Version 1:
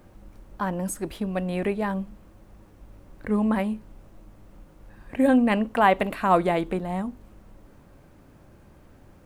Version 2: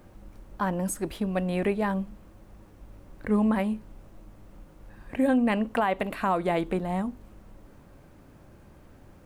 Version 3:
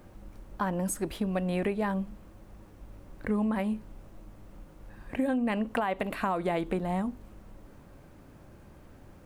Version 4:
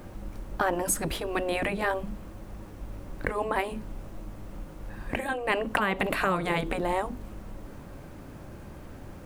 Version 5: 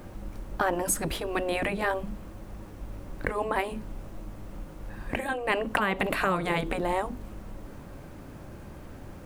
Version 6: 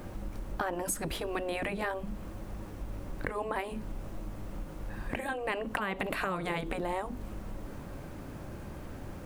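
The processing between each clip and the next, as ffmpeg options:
ffmpeg -i in.wav -af "alimiter=limit=-15.5dB:level=0:latency=1:release=234" out.wav
ffmpeg -i in.wav -af "acompressor=threshold=-25dB:ratio=6" out.wav
ffmpeg -i in.wav -af "afftfilt=real='re*lt(hypot(re,im),0.178)':imag='im*lt(hypot(re,im),0.178)':win_size=1024:overlap=0.75,volume=8.5dB" out.wav
ffmpeg -i in.wav -af anull out.wav
ffmpeg -i in.wav -af "acompressor=threshold=-34dB:ratio=2.5,volume=1dB" out.wav

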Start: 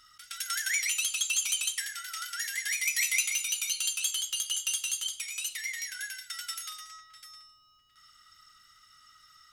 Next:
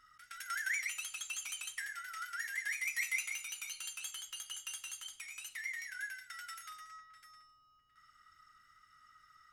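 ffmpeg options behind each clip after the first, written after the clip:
ffmpeg -i in.wav -af "highshelf=frequency=2500:width_type=q:width=1.5:gain=-9,volume=-4dB" out.wav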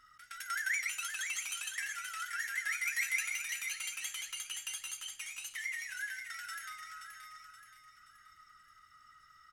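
ffmpeg -i in.wav -af "aecho=1:1:526|1052|1578|2104|2630:0.422|0.186|0.0816|0.0359|0.0158,volume=2dB" out.wav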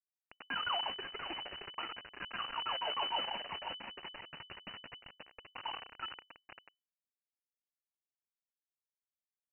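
ffmpeg -i in.wav -af "acrusher=bits=3:dc=4:mix=0:aa=0.000001,lowpass=frequency=2600:width_type=q:width=0.5098,lowpass=frequency=2600:width_type=q:width=0.6013,lowpass=frequency=2600:width_type=q:width=0.9,lowpass=frequency=2600:width_type=q:width=2.563,afreqshift=-3000,volume=3dB" out.wav

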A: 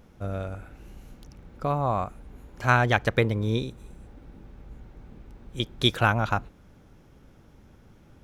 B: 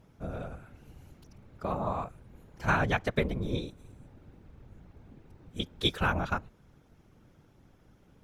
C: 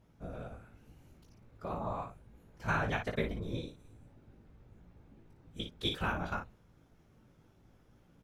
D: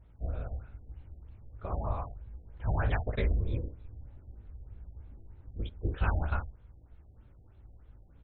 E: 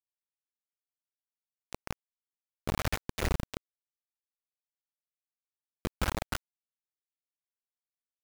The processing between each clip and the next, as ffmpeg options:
ffmpeg -i in.wav -af "afftfilt=real='hypot(re,im)*cos(2*PI*random(0))':imag='hypot(re,im)*sin(2*PI*random(1))':win_size=512:overlap=0.75" out.wav
ffmpeg -i in.wav -af "areverse,acompressor=mode=upward:threshold=-52dB:ratio=2.5,areverse,aecho=1:1:18|57:0.596|0.473,volume=-7.5dB" out.wav
ffmpeg -i in.wav -af "lowshelf=frequency=110:width_type=q:width=1.5:gain=12.5,afftfilt=real='re*lt(b*sr/1024,790*pow(4400/790,0.5+0.5*sin(2*PI*3.2*pts/sr)))':imag='im*lt(b*sr/1024,790*pow(4400/790,0.5+0.5*sin(2*PI*3.2*pts/sr)))':win_size=1024:overlap=0.75" out.wav
ffmpeg -i in.wav -af "acrusher=bits=3:mix=0:aa=0.000001,volume=-4.5dB" out.wav

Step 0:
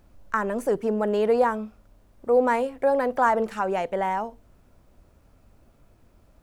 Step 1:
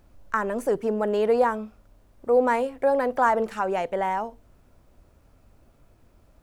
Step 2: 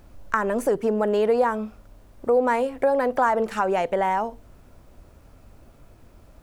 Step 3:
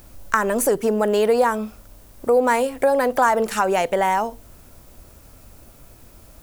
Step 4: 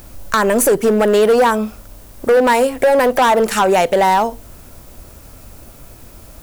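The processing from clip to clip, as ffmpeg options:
ffmpeg -i in.wav -af "equalizer=frequency=200:width=4.3:gain=-2.5" out.wav
ffmpeg -i in.wav -af "acompressor=threshold=-29dB:ratio=2,volume=7dB" out.wav
ffmpeg -i in.wav -af "crystalizer=i=3:c=0,volume=2.5dB" out.wav
ffmpeg -i in.wav -af "volume=15.5dB,asoftclip=hard,volume=-15.5dB,volume=7.5dB" out.wav

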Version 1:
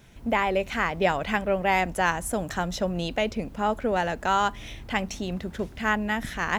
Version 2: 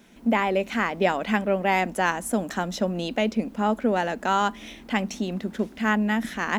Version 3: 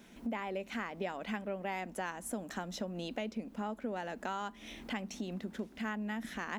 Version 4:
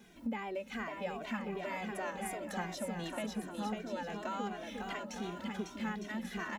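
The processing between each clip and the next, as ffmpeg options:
ffmpeg -i in.wav -af "lowshelf=frequency=160:width_type=q:width=3:gain=-10.5" out.wav
ffmpeg -i in.wav -af "acompressor=threshold=-36dB:ratio=3,volume=-3dB" out.wav
ffmpeg -i in.wav -filter_complex "[0:a]asplit=2[link_01][link_02];[link_02]aecho=0:1:550|907.5|1140|1291|1389:0.631|0.398|0.251|0.158|0.1[link_03];[link_01][link_03]amix=inputs=2:normalize=0,asplit=2[link_04][link_05];[link_05]adelay=2,afreqshift=-2.7[link_06];[link_04][link_06]amix=inputs=2:normalize=1,volume=1dB" out.wav

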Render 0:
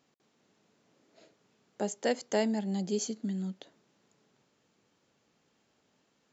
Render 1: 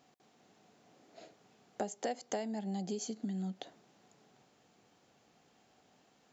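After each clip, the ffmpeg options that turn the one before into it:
ffmpeg -i in.wav -af "acompressor=threshold=-38dB:ratio=16,equalizer=frequency=740:width=6.9:gain=11,volume=3.5dB" out.wav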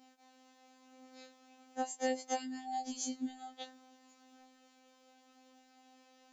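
ffmpeg -i in.wav -af "afftfilt=real='hypot(re,im)*cos(PI*b)':imag='0':win_size=2048:overlap=0.75,aphaser=in_gain=1:out_gain=1:delay=4.8:decay=0.24:speed=0.36:type=triangular,afftfilt=real='re*3.46*eq(mod(b,12),0)':imag='im*3.46*eq(mod(b,12),0)':win_size=2048:overlap=0.75,volume=3dB" out.wav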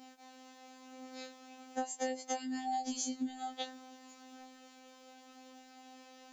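ffmpeg -i in.wav -af "acompressor=threshold=-41dB:ratio=6,volume=8dB" out.wav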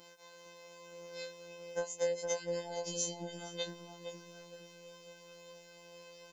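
ffmpeg -i in.wav -filter_complex "[0:a]afftfilt=real='hypot(re,im)*cos(PI*b)':imag='0':win_size=1024:overlap=0.75,asplit=2[link_01][link_02];[link_02]adelay=464,lowpass=frequency=1200:poles=1,volume=-4dB,asplit=2[link_03][link_04];[link_04]adelay=464,lowpass=frequency=1200:poles=1,volume=0.46,asplit=2[link_05][link_06];[link_06]adelay=464,lowpass=frequency=1200:poles=1,volume=0.46,asplit=2[link_07][link_08];[link_08]adelay=464,lowpass=frequency=1200:poles=1,volume=0.46,asplit=2[link_09][link_10];[link_10]adelay=464,lowpass=frequency=1200:poles=1,volume=0.46,asplit=2[link_11][link_12];[link_12]adelay=464,lowpass=frequency=1200:poles=1,volume=0.46[link_13];[link_01][link_03][link_05][link_07][link_09][link_11][link_13]amix=inputs=7:normalize=0,volume=6dB" out.wav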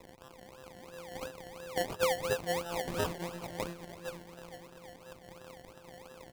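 ffmpeg -i in.wav -af "acrusher=samples=28:mix=1:aa=0.000001:lfo=1:lforange=16.8:lforate=2.9,volume=3.5dB" out.wav

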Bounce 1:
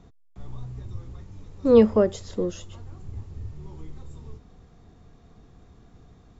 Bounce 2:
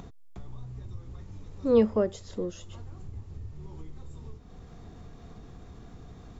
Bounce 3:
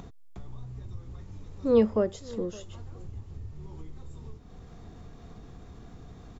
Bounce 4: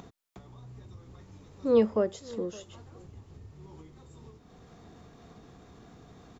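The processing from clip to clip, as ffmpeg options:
ffmpeg -i in.wav -af "acompressor=mode=upward:threshold=-28dB:ratio=2.5,volume=-6dB" out.wav
ffmpeg -i in.wav -filter_complex "[0:a]asplit=2[link_01][link_02];[link_02]adelay=565.6,volume=-21dB,highshelf=frequency=4000:gain=-12.7[link_03];[link_01][link_03]amix=inputs=2:normalize=0" out.wav
ffmpeg -i in.wav -af "highpass=frequency=200:poles=1" out.wav

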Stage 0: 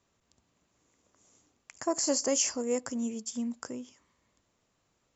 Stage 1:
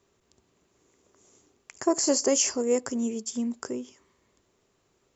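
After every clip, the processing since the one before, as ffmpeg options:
ffmpeg -i in.wav -af "equalizer=frequency=390:width_type=o:width=0.34:gain=11,volume=3.5dB" out.wav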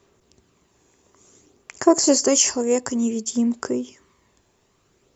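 ffmpeg -i in.wav -af "aphaser=in_gain=1:out_gain=1:delay=1.2:decay=0.3:speed=0.56:type=sinusoidal,volume=6dB" out.wav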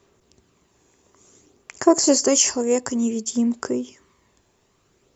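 ffmpeg -i in.wav -af anull out.wav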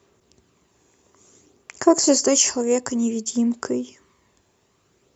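ffmpeg -i in.wav -af "highpass=52" out.wav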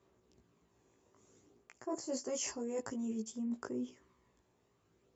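ffmpeg -i in.wav -af "highshelf=frequency=2200:gain=-8.5,flanger=delay=16:depth=2.5:speed=0.48,areverse,acompressor=threshold=-29dB:ratio=16,areverse,volume=-6dB" out.wav

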